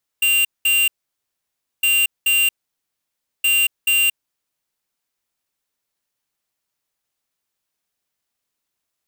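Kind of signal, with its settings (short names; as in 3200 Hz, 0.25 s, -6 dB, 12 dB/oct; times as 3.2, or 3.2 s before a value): beep pattern square 2780 Hz, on 0.23 s, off 0.20 s, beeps 2, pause 0.95 s, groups 3, -16 dBFS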